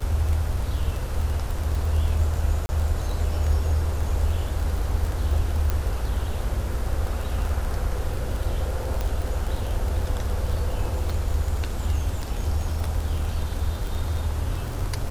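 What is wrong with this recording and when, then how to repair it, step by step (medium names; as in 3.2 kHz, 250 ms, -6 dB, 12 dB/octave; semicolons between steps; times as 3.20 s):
crackle 23 per s -27 dBFS
2.66–2.69 s: dropout 30 ms
5.70 s: pop -11 dBFS
9.01 s: pop -14 dBFS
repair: de-click; interpolate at 2.66 s, 30 ms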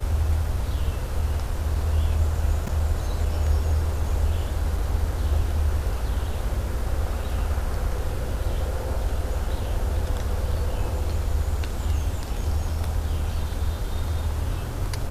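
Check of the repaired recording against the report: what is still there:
nothing left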